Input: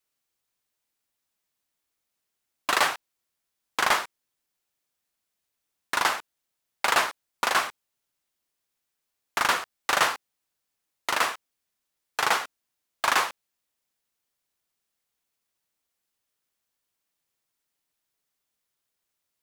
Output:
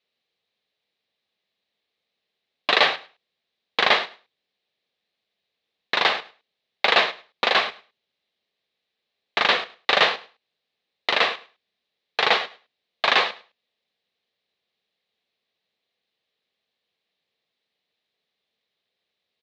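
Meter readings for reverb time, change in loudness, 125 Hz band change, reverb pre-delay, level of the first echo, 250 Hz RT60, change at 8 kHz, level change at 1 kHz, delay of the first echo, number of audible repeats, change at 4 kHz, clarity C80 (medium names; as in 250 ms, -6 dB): no reverb, +4.5 dB, +2.5 dB, no reverb, -19.5 dB, no reverb, -12.0 dB, +1.5 dB, 104 ms, 2, +8.5 dB, no reverb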